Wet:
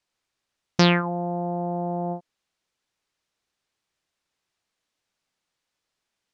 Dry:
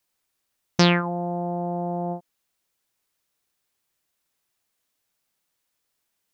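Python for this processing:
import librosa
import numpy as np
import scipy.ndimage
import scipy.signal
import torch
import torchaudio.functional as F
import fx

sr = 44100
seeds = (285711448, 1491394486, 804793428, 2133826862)

y = scipy.signal.sosfilt(scipy.signal.butter(2, 6100.0, 'lowpass', fs=sr, output='sos'), x)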